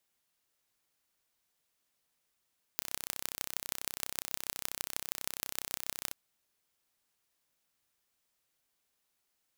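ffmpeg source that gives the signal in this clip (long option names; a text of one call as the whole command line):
ffmpeg -f lavfi -i "aevalsrc='0.562*eq(mod(n,1370),0)*(0.5+0.5*eq(mod(n,6850),0))':duration=3.34:sample_rate=44100" out.wav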